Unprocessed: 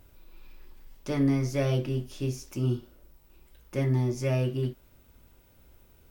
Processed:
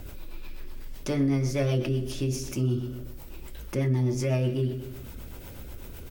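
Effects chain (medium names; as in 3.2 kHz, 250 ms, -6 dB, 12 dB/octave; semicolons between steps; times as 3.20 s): rotary cabinet horn 8 Hz; on a send: feedback delay 126 ms, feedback 36%, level -17 dB; on the sum: level flattener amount 50%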